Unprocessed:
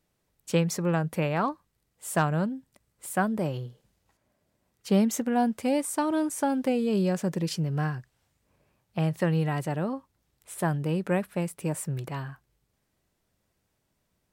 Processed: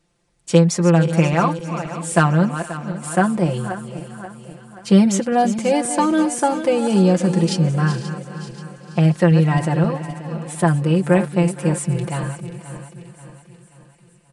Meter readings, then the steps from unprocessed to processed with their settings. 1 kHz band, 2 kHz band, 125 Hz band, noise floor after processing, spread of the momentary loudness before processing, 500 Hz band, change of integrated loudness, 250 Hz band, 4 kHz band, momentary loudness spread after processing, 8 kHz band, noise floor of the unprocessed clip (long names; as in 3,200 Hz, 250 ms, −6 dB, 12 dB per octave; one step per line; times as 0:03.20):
+9.5 dB, +9.0 dB, +12.0 dB, −53 dBFS, 13 LU, +10.0 dB, +9.5 dB, +10.0 dB, +9.5 dB, 18 LU, +9.0 dB, −76 dBFS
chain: feedback delay that plays each chunk backwards 266 ms, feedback 67%, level −11 dB
comb filter 5.8 ms, depth 74%
on a send: feedback echo with a high-pass in the loop 465 ms, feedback 67%, high-pass 920 Hz, level −18.5 dB
on the sum: downsampling to 22,050 Hz
level +7 dB